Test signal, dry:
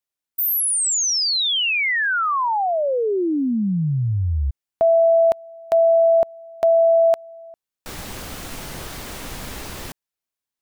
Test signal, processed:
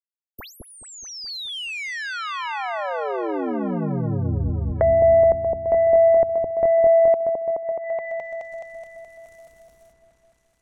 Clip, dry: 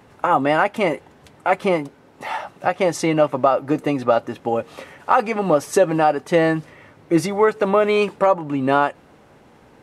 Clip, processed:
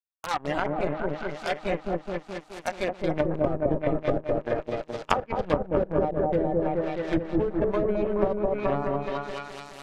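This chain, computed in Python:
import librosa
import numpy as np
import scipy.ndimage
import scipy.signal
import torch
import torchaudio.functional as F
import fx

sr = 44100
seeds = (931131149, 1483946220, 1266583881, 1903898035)

p1 = (np.mod(10.0 ** (9.5 / 20.0) * x + 1.0, 2.0) - 1.0) / 10.0 ** (9.5 / 20.0)
p2 = x + F.gain(torch.from_numpy(p1), -6.0).numpy()
p3 = fx.power_curve(p2, sr, exponent=3.0)
p4 = fx.low_shelf(p3, sr, hz=80.0, db=7.5)
p5 = p4 + fx.echo_opening(p4, sr, ms=212, hz=750, octaves=1, feedback_pct=70, wet_db=0, dry=0)
p6 = fx.noise_reduce_blind(p5, sr, reduce_db=8)
p7 = fx.env_lowpass_down(p6, sr, base_hz=570.0, full_db=-19.5)
y = F.gain(torch.from_numpy(p7), 1.5).numpy()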